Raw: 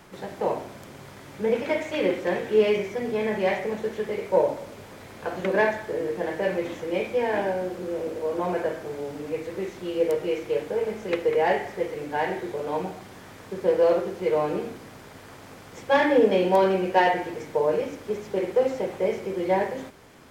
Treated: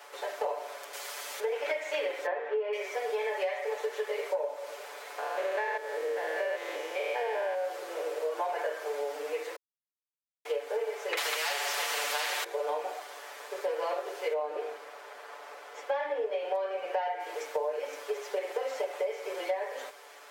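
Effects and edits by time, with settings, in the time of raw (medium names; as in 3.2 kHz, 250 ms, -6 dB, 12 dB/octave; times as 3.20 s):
0.93–1.40 s: treble shelf 2.7 kHz +12 dB
2.26–2.73 s: low-pass 1.7 kHz
5.18–7.65 s: spectrogram pixelated in time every 200 ms
9.56–10.45 s: mute
11.17–12.44 s: spectrum-flattening compressor 4:1
14.33–17.20 s: treble shelf 3.6 kHz -10.5 dB
whole clip: inverse Chebyshev high-pass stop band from 240 Hz, stop band 40 dB; comb 6.9 ms, depth 97%; compression 16:1, threshold -28 dBFS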